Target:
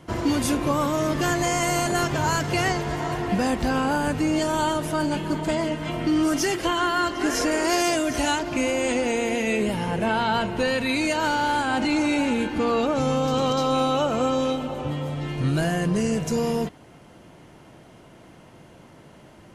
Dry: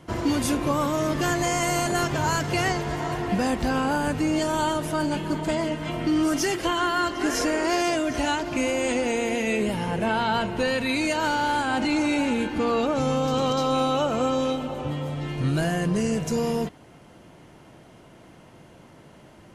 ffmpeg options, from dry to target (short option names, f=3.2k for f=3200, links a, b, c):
-filter_complex "[0:a]asettb=1/sr,asplit=3[a][b][c];[a]atrim=end=7.514[d];[b]atrim=start=7.51:end=8.39,asetpts=PTS-STARTPTS,afade=t=in:d=0.004:c=qsin,afade=t=out:st=0.876:d=0.004:c=qsin,highshelf=f=7k:g=10.5[e];[c]atrim=start=8.386[f];[d][e]acrossfade=d=0.004:c1=hsin:c2=qsin[g];[g][f]acrossfade=d=0.004:c1=qsin:c2=hsin,volume=1dB"